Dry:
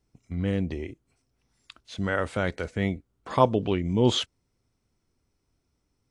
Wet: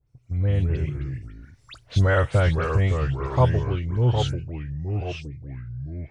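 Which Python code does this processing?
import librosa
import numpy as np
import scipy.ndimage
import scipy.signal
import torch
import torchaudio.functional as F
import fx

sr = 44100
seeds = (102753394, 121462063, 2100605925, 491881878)

y = fx.doppler_pass(x, sr, speed_mps=6, closest_m=3.8, pass_at_s=1.82)
y = fx.peak_eq(y, sr, hz=550.0, db=3.5, octaves=0.36)
y = fx.dispersion(y, sr, late='highs', ms=86.0, hz=2900.0)
y = fx.echo_pitch(y, sr, ms=120, semitones=-3, count=2, db_per_echo=-6.0)
y = fx.low_shelf_res(y, sr, hz=160.0, db=7.5, q=3.0)
y = y * 10.0 ** (5.5 / 20.0)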